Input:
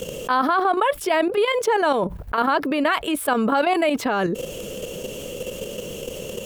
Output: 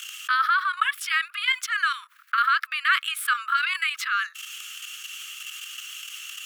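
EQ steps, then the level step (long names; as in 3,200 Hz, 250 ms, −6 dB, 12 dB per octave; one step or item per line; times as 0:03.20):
Butterworth high-pass 1,200 Hz 96 dB per octave
high-shelf EQ 5,000 Hz −7 dB
+4.5 dB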